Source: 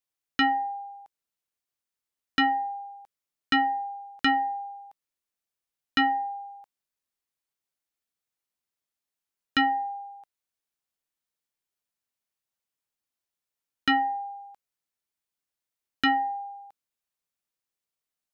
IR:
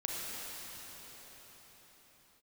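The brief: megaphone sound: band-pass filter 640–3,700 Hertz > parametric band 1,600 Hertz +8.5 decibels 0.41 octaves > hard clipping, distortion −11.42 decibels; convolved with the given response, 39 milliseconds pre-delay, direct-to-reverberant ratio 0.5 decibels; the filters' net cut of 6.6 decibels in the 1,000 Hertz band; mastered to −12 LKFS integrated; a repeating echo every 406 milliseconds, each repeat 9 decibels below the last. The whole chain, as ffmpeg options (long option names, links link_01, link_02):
-filter_complex "[0:a]equalizer=frequency=1000:width_type=o:gain=-8.5,aecho=1:1:406|812|1218|1624:0.355|0.124|0.0435|0.0152,asplit=2[link_01][link_02];[1:a]atrim=start_sample=2205,adelay=39[link_03];[link_02][link_03]afir=irnorm=-1:irlink=0,volume=-5dB[link_04];[link_01][link_04]amix=inputs=2:normalize=0,highpass=640,lowpass=3700,equalizer=frequency=1600:width_type=o:width=0.41:gain=8.5,asoftclip=type=hard:threshold=-22.5dB,volume=19dB"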